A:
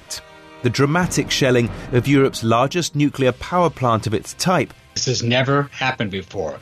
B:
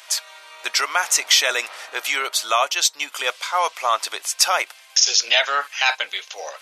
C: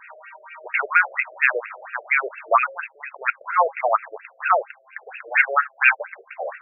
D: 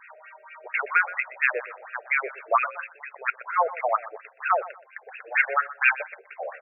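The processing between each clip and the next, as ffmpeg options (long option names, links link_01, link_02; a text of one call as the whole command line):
ffmpeg -i in.wav -af "highpass=frequency=670:width=0.5412,highpass=frequency=670:width=1.3066,highshelf=frequency=2300:gain=10.5,volume=-2dB" out.wav
ffmpeg -i in.wav -af "aeval=exprs='0.891*(cos(1*acos(clip(val(0)/0.891,-1,1)))-cos(1*PI/2))+0.00708*(cos(4*acos(clip(val(0)/0.891,-1,1)))-cos(4*PI/2))':channel_layout=same,bandreject=frequency=272:width_type=h:width=4,bandreject=frequency=544:width_type=h:width=4,bandreject=frequency=816:width_type=h:width=4,afftfilt=real='re*between(b*sr/1024,480*pow(2000/480,0.5+0.5*sin(2*PI*4.3*pts/sr))/1.41,480*pow(2000/480,0.5+0.5*sin(2*PI*4.3*pts/sr))*1.41)':imag='im*between(b*sr/1024,480*pow(2000/480,0.5+0.5*sin(2*PI*4.3*pts/sr))/1.41,480*pow(2000/480,0.5+0.5*sin(2*PI*4.3*pts/sr))*1.41)':win_size=1024:overlap=0.75,volume=6.5dB" out.wav
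ffmpeg -i in.wav -af "aecho=1:1:123|246:0.141|0.0367,volume=-4.5dB" out.wav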